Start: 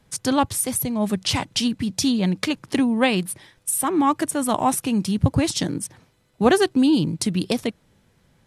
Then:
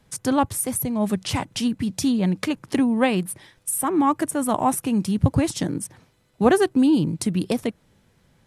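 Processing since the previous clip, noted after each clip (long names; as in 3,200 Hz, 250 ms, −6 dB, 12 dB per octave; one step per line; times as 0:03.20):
dynamic equaliser 4,200 Hz, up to −8 dB, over −40 dBFS, Q 0.79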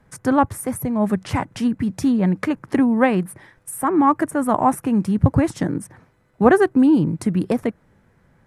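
high shelf with overshoot 2,400 Hz −9.5 dB, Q 1.5
level +3 dB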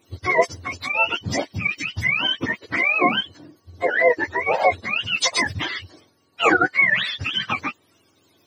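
frequency axis turned over on the octave scale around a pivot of 750 Hz
level +1.5 dB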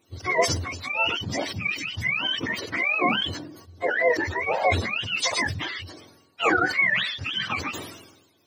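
level that may fall only so fast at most 56 dB per second
level −5 dB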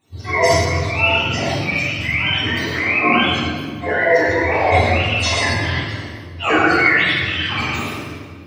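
convolution reverb RT60 1.8 s, pre-delay 13 ms, DRR −9 dB
level −4.5 dB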